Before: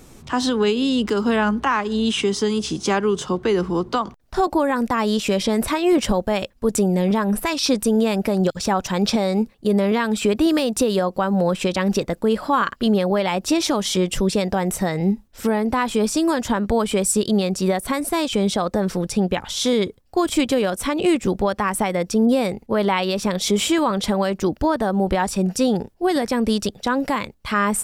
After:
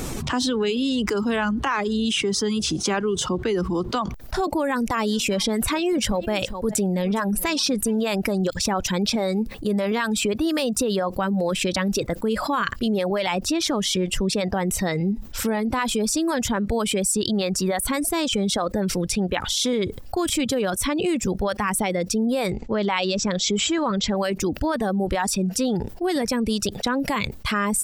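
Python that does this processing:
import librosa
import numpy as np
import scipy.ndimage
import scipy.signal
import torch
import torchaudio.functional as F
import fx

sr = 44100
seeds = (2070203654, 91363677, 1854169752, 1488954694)

y = fx.echo_single(x, sr, ms=412, db=-20.0, at=(4.98, 7.99), fade=0.02)
y = fx.high_shelf(y, sr, hz=6000.0, db=-6.0, at=(13.28, 14.79))
y = fx.brickwall_lowpass(y, sr, high_hz=8000.0, at=(22.5, 24.17))
y = fx.dereverb_blind(y, sr, rt60_s=0.93)
y = fx.dynamic_eq(y, sr, hz=890.0, q=0.79, threshold_db=-35.0, ratio=4.0, max_db=-4)
y = fx.env_flatten(y, sr, amount_pct=70)
y = y * 10.0 ** (-5.0 / 20.0)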